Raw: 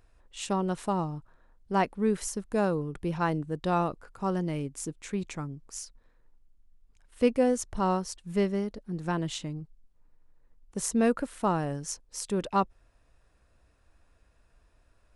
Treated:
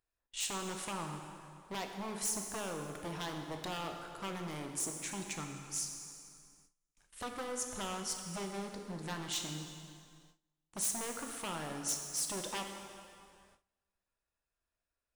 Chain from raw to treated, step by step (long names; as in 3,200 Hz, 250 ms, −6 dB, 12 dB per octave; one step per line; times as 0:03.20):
downward compressor 10 to 1, threshold −29 dBFS, peak gain reduction 12 dB
wave folding −30.5 dBFS
spectral tilt +2 dB per octave
dense smooth reverb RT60 2.5 s, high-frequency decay 0.8×, DRR 3 dB
noise gate with hold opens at −47 dBFS
level −3 dB